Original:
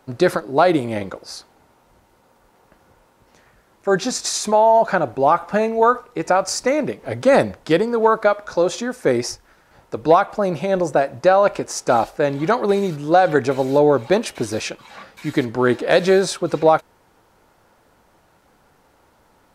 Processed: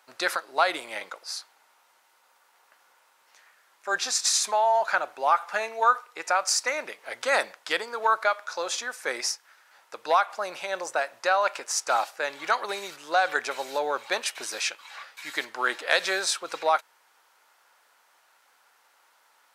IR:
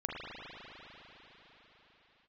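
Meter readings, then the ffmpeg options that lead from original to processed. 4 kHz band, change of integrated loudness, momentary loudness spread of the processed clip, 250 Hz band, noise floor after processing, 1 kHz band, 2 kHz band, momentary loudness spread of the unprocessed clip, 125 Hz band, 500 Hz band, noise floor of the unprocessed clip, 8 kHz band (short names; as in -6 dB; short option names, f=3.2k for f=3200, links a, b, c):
0.0 dB, -8.0 dB, 11 LU, -24.0 dB, -64 dBFS, -6.0 dB, -1.0 dB, 11 LU, under -30 dB, -14.0 dB, -58 dBFS, 0.0 dB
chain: -af "highpass=1.2k"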